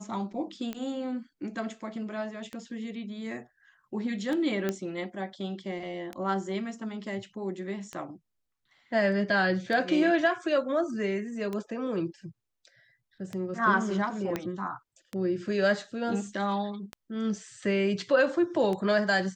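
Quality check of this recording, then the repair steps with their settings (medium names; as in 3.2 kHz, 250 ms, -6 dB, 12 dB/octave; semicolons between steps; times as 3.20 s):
tick 33 1/3 rpm -21 dBFS
4.69 s: pop -15 dBFS
14.36 s: pop -16 dBFS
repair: de-click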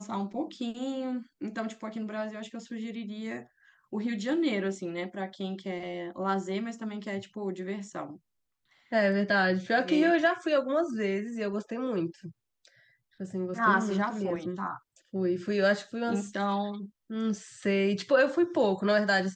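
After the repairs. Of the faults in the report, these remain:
14.36 s: pop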